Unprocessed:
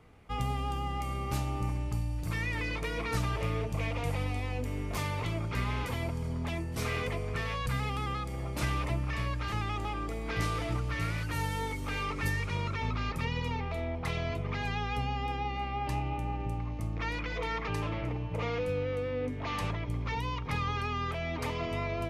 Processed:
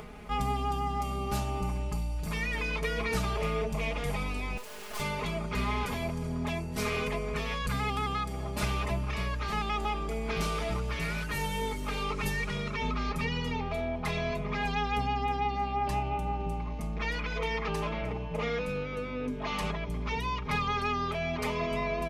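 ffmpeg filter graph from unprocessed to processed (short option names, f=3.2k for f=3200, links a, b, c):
-filter_complex "[0:a]asettb=1/sr,asplit=3[a][b][c];[a]atrim=end=4.574[d];[b]atrim=start=4.57:end=5,asetpts=PTS-STARTPTS,afade=t=in:d=0.004:c=qsin,afade=t=out:st=0.426:d=0.004:c=qsin,highpass=f=480:w=0.5412,highpass=f=480:w=1.3066,acrusher=bits=5:dc=4:mix=0:aa=0.000001[e];[c]atrim=start=4.996[f];[d][e]acrossfade=d=0.004:c1=hsin:c2=qsin[g];[g][f]acrossfade=d=0.004:c1=qsin:c2=hsin,aecho=1:1:4.8:0.96,acompressor=mode=upward:threshold=-35dB:ratio=2.5"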